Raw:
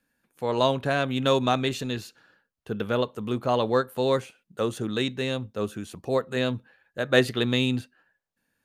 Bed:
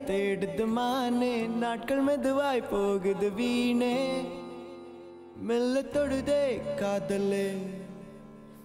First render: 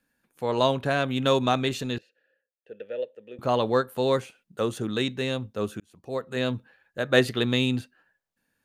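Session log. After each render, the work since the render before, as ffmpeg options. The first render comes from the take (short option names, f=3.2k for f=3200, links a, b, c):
-filter_complex "[0:a]asettb=1/sr,asplit=3[a][b][c];[a]atrim=end=1.984[d];[b]atrim=start=1.98:end=3.39,asetpts=PTS-STARTPTS,afade=t=in:d=0.004:c=qsin,afade=t=out:st=1.406:d=0.004:c=qsin,asplit=3[e][f][g];[e]bandpass=f=530:t=q:w=8,volume=0dB[h];[f]bandpass=f=1.84k:t=q:w=8,volume=-6dB[i];[g]bandpass=f=2.48k:t=q:w=8,volume=-9dB[j];[h][i][j]amix=inputs=3:normalize=0[k];[c]atrim=start=3.386[l];[d][k]acrossfade=d=0.004:c1=hsin:c2=qsin[m];[m][l]acrossfade=d=0.004:c1=qsin:c2=hsin,asplit=2[n][o];[n]atrim=end=5.8,asetpts=PTS-STARTPTS,afade=t=out:st=5.796:d=0.004:c=hsin[p];[o]atrim=start=5.8,asetpts=PTS-STARTPTS,afade=t=in:d=0.71[q];[p][q]concat=n=2:v=0:a=1"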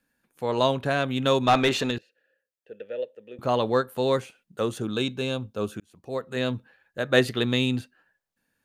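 -filter_complex "[0:a]asplit=3[a][b][c];[a]afade=t=out:st=1.47:d=0.02[d];[b]asplit=2[e][f];[f]highpass=f=720:p=1,volume=19dB,asoftclip=type=tanh:threshold=-9dB[g];[e][g]amix=inputs=2:normalize=0,lowpass=f=2.4k:p=1,volume=-6dB,afade=t=in:st=1.47:d=0.02,afade=t=out:st=1.9:d=0.02[h];[c]afade=t=in:st=1.9:d=0.02[i];[d][h][i]amix=inputs=3:normalize=0,asettb=1/sr,asplit=3[j][k][l];[j]atrim=end=4.824[m];[k]atrim=start=4.82:end=5.72,asetpts=PTS-STARTPTS,afade=t=in:d=0.004:c=qsin,afade=t=out:st=0.896:d=0.004:c=qsin,asuperstop=centerf=1900:order=4:qfactor=4.8[n];[l]atrim=start=5.716[o];[m][n]acrossfade=d=0.004:c1=hsin:c2=qsin[p];[p][o]acrossfade=d=0.004:c1=qsin:c2=hsin"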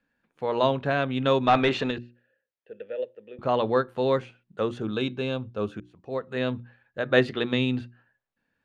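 -af "lowpass=3.2k,bandreject=f=60:t=h:w=6,bandreject=f=120:t=h:w=6,bandreject=f=180:t=h:w=6,bandreject=f=240:t=h:w=6,bandreject=f=300:t=h:w=6,bandreject=f=360:t=h:w=6"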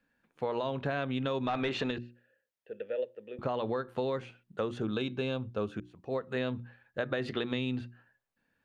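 -af "alimiter=limit=-16.5dB:level=0:latency=1:release=91,acompressor=threshold=-29dB:ratio=6"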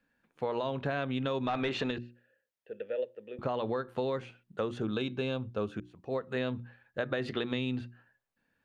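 -af anull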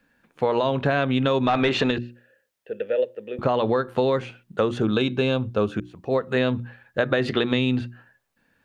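-af "volume=11dB"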